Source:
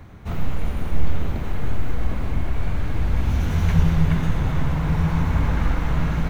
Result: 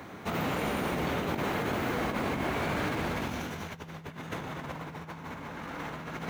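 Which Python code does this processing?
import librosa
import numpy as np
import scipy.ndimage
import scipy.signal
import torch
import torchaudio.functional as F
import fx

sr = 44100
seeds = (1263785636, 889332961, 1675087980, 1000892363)

y = scipy.signal.sosfilt(scipy.signal.butter(2, 260.0, 'highpass', fs=sr, output='sos'), x)
y = fx.over_compress(y, sr, threshold_db=-36.0, ratio=-0.5)
y = F.gain(torch.from_numpy(y), 2.5).numpy()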